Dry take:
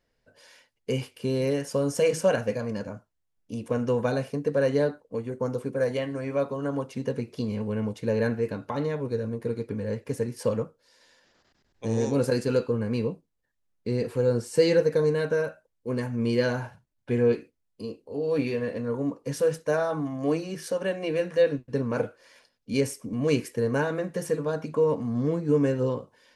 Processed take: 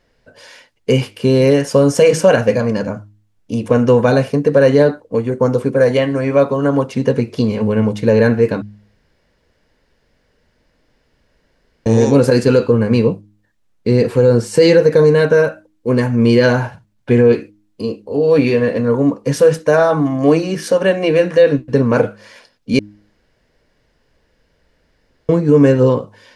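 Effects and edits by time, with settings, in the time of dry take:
0:08.62–0:11.86: fill with room tone
0:22.79–0:25.29: fill with room tone
whole clip: high-shelf EQ 9,600 Hz −10.5 dB; hum removal 103.6 Hz, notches 3; boost into a limiter +15.5 dB; level −1 dB

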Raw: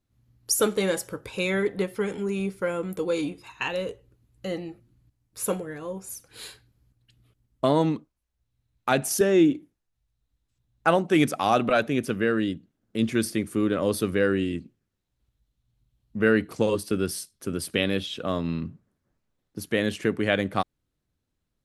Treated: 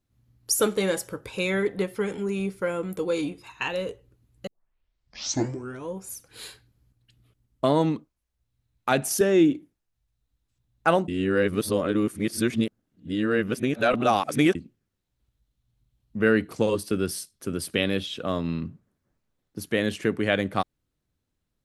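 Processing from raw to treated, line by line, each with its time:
0:04.47: tape start 1.48 s
0:11.08–0:14.55: reverse

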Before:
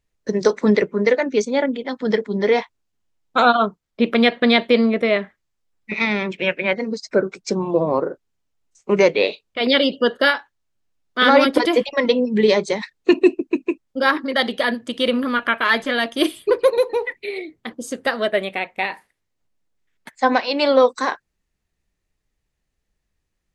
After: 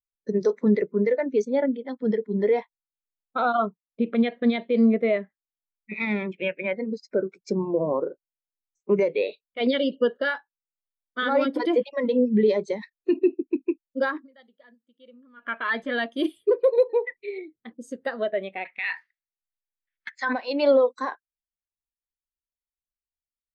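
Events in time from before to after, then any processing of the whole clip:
0:14.09–0:15.56: duck −20 dB, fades 0.20 s
0:18.65–0:20.33: flat-topped bell 2,700 Hz +16 dB 2.8 octaves
whole clip: brickwall limiter −10.5 dBFS; every bin expanded away from the loudest bin 1.5 to 1

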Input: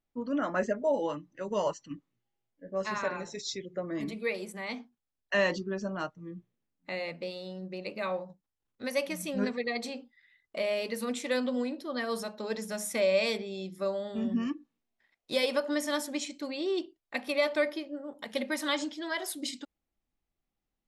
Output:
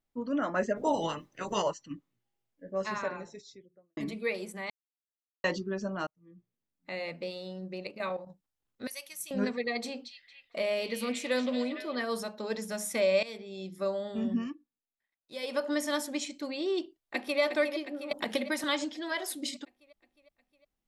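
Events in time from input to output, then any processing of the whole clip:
0:00.75–0:01.61: ceiling on every frequency bin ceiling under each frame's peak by 19 dB
0:02.74–0:03.97: fade out and dull
0:04.70–0:05.44: silence
0:06.07–0:07.15: fade in
0:07.87–0:08.27: output level in coarse steps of 11 dB
0:08.87–0:09.31: first difference
0:09.81–0:12.02: echo through a band-pass that steps 229 ms, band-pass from 3,800 Hz, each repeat −0.7 octaves, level −4 dB
0:13.23–0:13.75: fade in, from −17 dB
0:14.35–0:15.63: duck −16 dB, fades 0.40 s quadratic
0:16.78–0:17.40: delay throw 360 ms, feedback 65%, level −8.5 dB
0:18.11–0:18.64: multiband upward and downward compressor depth 100%

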